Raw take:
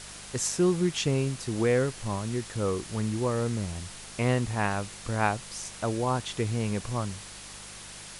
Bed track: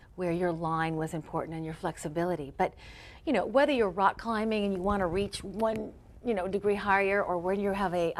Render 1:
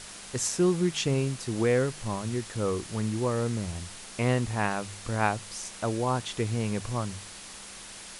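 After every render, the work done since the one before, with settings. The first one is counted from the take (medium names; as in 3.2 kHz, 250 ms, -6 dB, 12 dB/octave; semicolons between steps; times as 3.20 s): de-hum 50 Hz, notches 3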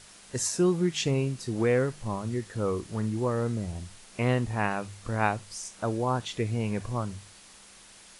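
noise print and reduce 8 dB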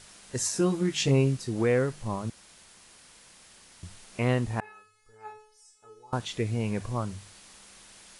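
0.54–1.37 s: doubling 15 ms -3 dB; 2.30–3.83 s: room tone; 4.60–6.13 s: feedback comb 430 Hz, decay 0.52 s, mix 100%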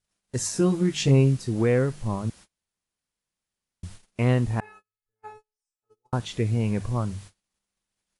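gate -47 dBFS, range -34 dB; bass shelf 280 Hz +7 dB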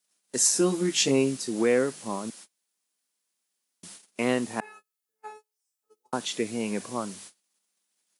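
high-pass 220 Hz 24 dB/octave; treble shelf 4.4 kHz +11 dB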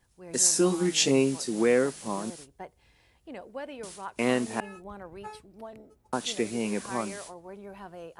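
add bed track -14.5 dB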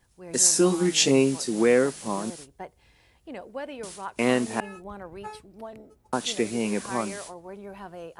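trim +3 dB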